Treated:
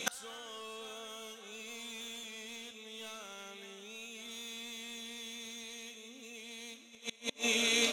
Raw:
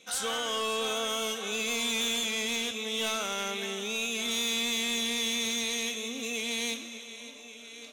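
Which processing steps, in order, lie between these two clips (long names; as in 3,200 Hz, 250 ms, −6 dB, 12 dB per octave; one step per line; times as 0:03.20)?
gate with flip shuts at −32 dBFS, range −32 dB
level +16.5 dB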